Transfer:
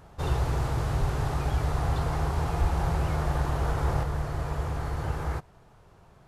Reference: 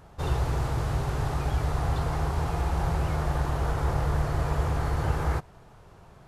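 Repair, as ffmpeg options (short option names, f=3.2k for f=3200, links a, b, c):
-filter_complex "[0:a]asplit=3[a][b][c];[a]afade=t=out:st=1:d=0.02[d];[b]highpass=f=140:w=0.5412,highpass=f=140:w=1.3066,afade=t=in:st=1:d=0.02,afade=t=out:st=1.12:d=0.02[e];[c]afade=t=in:st=1.12:d=0.02[f];[d][e][f]amix=inputs=3:normalize=0,asplit=3[g][h][i];[g]afade=t=out:st=2.6:d=0.02[j];[h]highpass=f=140:w=0.5412,highpass=f=140:w=1.3066,afade=t=in:st=2.6:d=0.02,afade=t=out:st=2.72:d=0.02[k];[i]afade=t=in:st=2.72:d=0.02[l];[j][k][l]amix=inputs=3:normalize=0,asetnsamples=n=441:p=0,asendcmd='4.03 volume volume 4dB',volume=0dB"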